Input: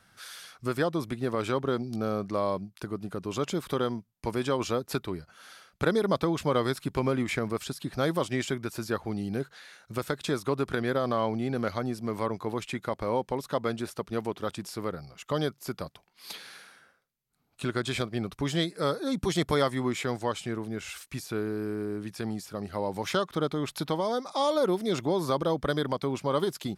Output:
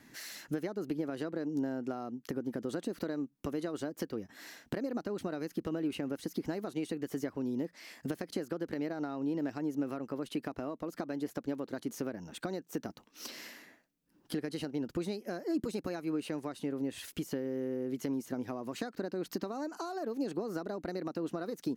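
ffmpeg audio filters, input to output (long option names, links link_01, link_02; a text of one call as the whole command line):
ffmpeg -i in.wav -af "acompressor=threshold=-40dB:ratio=10,equalizer=frequency=240:width=1.2:gain=13,asetrate=54243,aresample=44100" out.wav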